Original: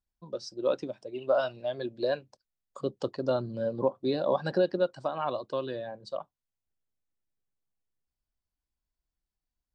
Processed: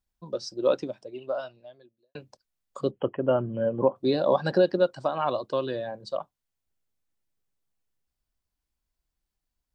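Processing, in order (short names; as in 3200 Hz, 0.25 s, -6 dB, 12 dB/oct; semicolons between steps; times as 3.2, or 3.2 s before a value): 0.74–2.15 fade out quadratic; 2.91–3.96 brick-wall FIR low-pass 3300 Hz; gain +4.5 dB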